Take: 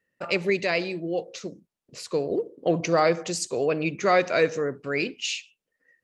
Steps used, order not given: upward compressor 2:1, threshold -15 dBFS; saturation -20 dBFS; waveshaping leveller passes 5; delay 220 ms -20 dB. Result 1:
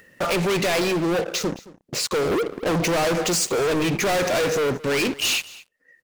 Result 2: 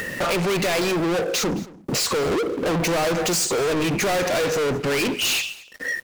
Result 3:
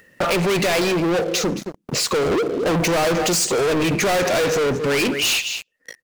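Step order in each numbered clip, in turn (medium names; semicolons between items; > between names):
waveshaping leveller > upward compressor > saturation > delay; upward compressor > saturation > waveshaping leveller > delay; saturation > delay > waveshaping leveller > upward compressor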